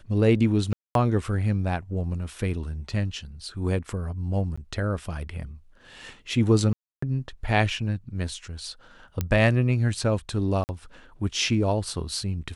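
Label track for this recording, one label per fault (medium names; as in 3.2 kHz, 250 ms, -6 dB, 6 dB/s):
0.730000	0.950000	dropout 222 ms
4.560000	4.580000	dropout 15 ms
6.730000	7.020000	dropout 294 ms
9.210000	9.210000	pop -12 dBFS
10.640000	10.690000	dropout 49 ms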